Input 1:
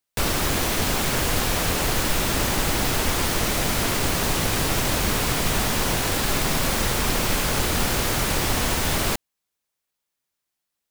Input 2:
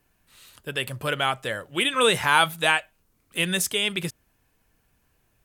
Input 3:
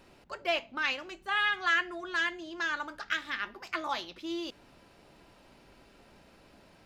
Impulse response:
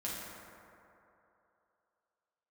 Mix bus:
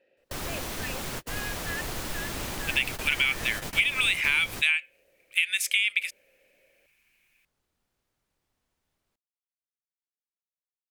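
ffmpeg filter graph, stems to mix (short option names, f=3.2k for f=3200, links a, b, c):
-filter_complex "[0:a]volume=-11.5dB[a];[1:a]highpass=f=2.3k:t=q:w=7.3,adelay=2000,volume=-2dB[b];[2:a]asplit=3[c][d][e];[c]bandpass=f=530:t=q:w=8,volume=0dB[f];[d]bandpass=f=1.84k:t=q:w=8,volume=-6dB[g];[e]bandpass=f=2.48k:t=q:w=8,volume=-9dB[h];[f][g][h]amix=inputs=3:normalize=0,volume=1.5dB,asplit=2[i][j];[j]apad=whole_len=481093[k];[a][k]sidechaingate=range=-46dB:threshold=-58dB:ratio=16:detection=peak[l];[l][b][i]amix=inputs=3:normalize=0,acompressor=threshold=-20dB:ratio=12"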